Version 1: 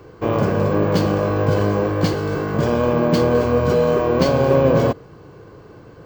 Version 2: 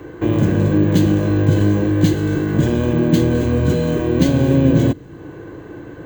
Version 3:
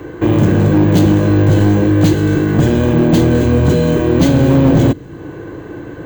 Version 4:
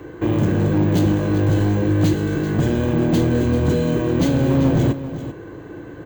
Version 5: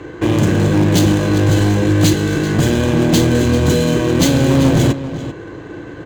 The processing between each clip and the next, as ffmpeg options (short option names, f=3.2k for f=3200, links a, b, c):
-filter_complex "[0:a]superequalizer=6b=2.51:10b=0.708:11b=1.78:14b=0.282:16b=0.631,acrossover=split=270|3000[a][b][c];[b]acompressor=threshold=-36dB:ratio=2.5[d];[a][d][c]amix=inputs=3:normalize=0,volume=5.5dB"
-af "asoftclip=type=hard:threshold=-11dB,volume=5.5dB"
-af "aecho=1:1:390:0.251,volume=-7dB"
-af "adynamicsmooth=sensitivity=8:basefreq=3.7k,crystalizer=i=5:c=0,volume=4dB"